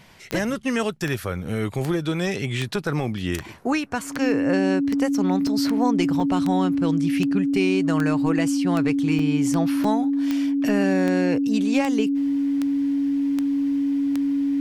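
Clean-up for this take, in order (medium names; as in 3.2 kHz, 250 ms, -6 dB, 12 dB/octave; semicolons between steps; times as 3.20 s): de-click; band-stop 280 Hz, Q 30; interpolate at 5.47/6.20/9.19/9.84 s, 3.8 ms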